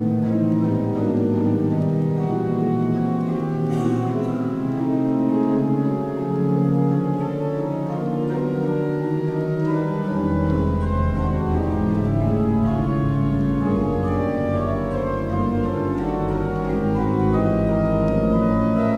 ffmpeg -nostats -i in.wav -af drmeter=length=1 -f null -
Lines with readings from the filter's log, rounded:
Channel 1: DR: 8.4
Overall DR: 8.4